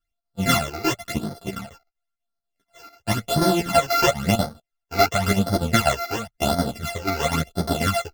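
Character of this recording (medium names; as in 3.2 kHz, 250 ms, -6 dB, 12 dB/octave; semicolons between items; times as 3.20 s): a buzz of ramps at a fixed pitch in blocks of 64 samples; phasing stages 12, 0.95 Hz, lowest notch 170–2600 Hz; chopped level 4.1 Hz, depth 65%, duty 80%; a shimmering, thickened sound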